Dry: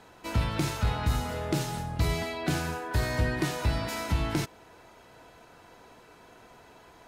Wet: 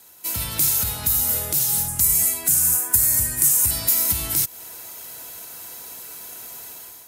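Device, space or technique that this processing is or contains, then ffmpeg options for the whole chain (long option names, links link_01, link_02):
FM broadcast chain: -filter_complex "[0:a]highpass=44,dynaudnorm=framelen=190:gausssize=5:maxgain=11.5dB,acrossover=split=130|590|6800[link_01][link_02][link_03][link_04];[link_01]acompressor=threshold=-19dB:ratio=4[link_05];[link_02]acompressor=threshold=-29dB:ratio=4[link_06];[link_03]acompressor=threshold=-31dB:ratio=4[link_07];[link_04]acompressor=threshold=-39dB:ratio=4[link_08];[link_05][link_06][link_07][link_08]amix=inputs=4:normalize=0,aemphasis=mode=production:type=75fm,alimiter=limit=-11dB:level=0:latency=1:release=276,asoftclip=type=hard:threshold=-14.5dB,lowpass=frequency=15000:width=0.5412,lowpass=frequency=15000:width=1.3066,aemphasis=mode=production:type=75fm,asettb=1/sr,asplit=3[link_09][link_10][link_11];[link_09]atrim=end=1.884[link_12];[link_10]atrim=start=1.88:end=3.71,asetpts=PTS-STARTPTS,afade=type=in:duration=0.004:curve=qsin,afade=type=out:start_time=1.826:duration=0.004:curve=qsin,equalizer=frequency=500:width_type=o:width=1:gain=-7,equalizer=frequency=4000:width_type=o:width=1:gain=-10,equalizer=frequency=8000:width_type=o:width=1:gain=9[link_13];[link_11]atrim=start=3.706[link_14];[link_12][link_13]acrossfade=duration=0.004:curve1=hsin:curve2=qsin[link_15];[link_15][link_14]acrossfade=duration=0.004:curve1=qsin:curve2=hsin,volume=-7dB"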